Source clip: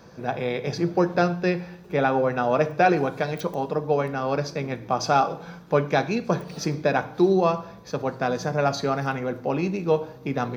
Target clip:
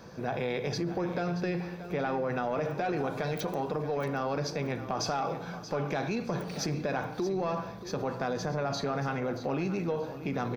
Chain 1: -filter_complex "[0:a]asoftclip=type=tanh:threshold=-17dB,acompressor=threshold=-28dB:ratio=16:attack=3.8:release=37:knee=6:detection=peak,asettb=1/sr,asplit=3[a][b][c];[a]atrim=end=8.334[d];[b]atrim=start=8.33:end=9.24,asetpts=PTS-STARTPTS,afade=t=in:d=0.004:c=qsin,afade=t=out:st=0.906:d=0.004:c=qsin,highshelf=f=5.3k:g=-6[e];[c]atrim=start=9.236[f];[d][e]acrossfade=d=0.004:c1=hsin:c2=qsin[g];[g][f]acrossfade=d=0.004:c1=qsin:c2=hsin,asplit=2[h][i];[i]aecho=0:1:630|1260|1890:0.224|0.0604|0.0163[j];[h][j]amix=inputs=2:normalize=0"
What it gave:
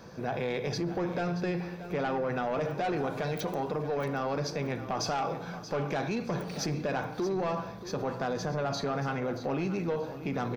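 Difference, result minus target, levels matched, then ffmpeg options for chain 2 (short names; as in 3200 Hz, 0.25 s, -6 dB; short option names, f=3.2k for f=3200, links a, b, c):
soft clip: distortion +10 dB
-filter_complex "[0:a]asoftclip=type=tanh:threshold=-9dB,acompressor=threshold=-28dB:ratio=16:attack=3.8:release=37:knee=6:detection=peak,asettb=1/sr,asplit=3[a][b][c];[a]atrim=end=8.334[d];[b]atrim=start=8.33:end=9.24,asetpts=PTS-STARTPTS,afade=t=in:d=0.004:c=qsin,afade=t=out:st=0.906:d=0.004:c=qsin,highshelf=f=5.3k:g=-6[e];[c]atrim=start=9.236[f];[d][e]acrossfade=d=0.004:c1=hsin:c2=qsin[g];[g][f]acrossfade=d=0.004:c1=qsin:c2=hsin,asplit=2[h][i];[i]aecho=0:1:630|1260|1890:0.224|0.0604|0.0163[j];[h][j]amix=inputs=2:normalize=0"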